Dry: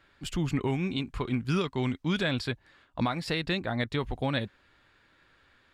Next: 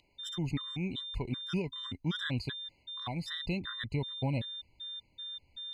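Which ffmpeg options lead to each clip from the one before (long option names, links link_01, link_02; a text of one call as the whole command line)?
ffmpeg -i in.wav -af "asubboost=boost=2.5:cutoff=220,aeval=exprs='val(0)+0.02*sin(2*PI*3600*n/s)':channel_layout=same,afftfilt=real='re*gt(sin(2*PI*2.6*pts/sr)*(1-2*mod(floor(b*sr/1024/1000),2)),0)':imag='im*gt(sin(2*PI*2.6*pts/sr)*(1-2*mod(floor(b*sr/1024/1000),2)),0)':win_size=1024:overlap=0.75,volume=-5dB" out.wav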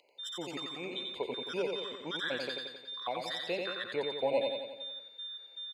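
ffmpeg -i in.wav -filter_complex "[0:a]highpass=frequency=510:width_type=q:width=3.8,asplit=2[link_01][link_02];[link_02]aecho=0:1:89|178|267|356|445|534|623|712:0.631|0.372|0.22|0.13|0.0765|0.0451|0.0266|0.0157[link_03];[link_01][link_03]amix=inputs=2:normalize=0" out.wav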